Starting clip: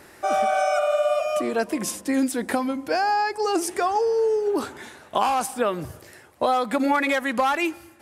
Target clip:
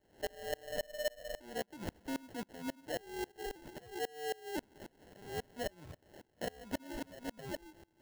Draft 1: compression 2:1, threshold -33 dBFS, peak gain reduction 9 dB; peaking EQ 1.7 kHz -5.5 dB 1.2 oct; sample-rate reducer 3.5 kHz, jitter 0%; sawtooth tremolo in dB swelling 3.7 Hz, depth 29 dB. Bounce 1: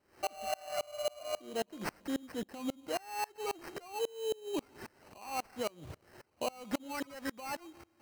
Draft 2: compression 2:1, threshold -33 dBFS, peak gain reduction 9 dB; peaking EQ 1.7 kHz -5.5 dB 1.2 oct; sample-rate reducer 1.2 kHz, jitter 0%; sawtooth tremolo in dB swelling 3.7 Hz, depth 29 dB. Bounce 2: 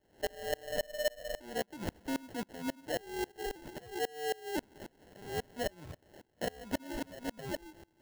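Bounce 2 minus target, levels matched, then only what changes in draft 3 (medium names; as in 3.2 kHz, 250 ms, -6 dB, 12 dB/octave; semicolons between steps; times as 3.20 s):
compression: peak gain reduction -4 dB
change: compression 2:1, threshold -40.5 dBFS, peak gain reduction 12.5 dB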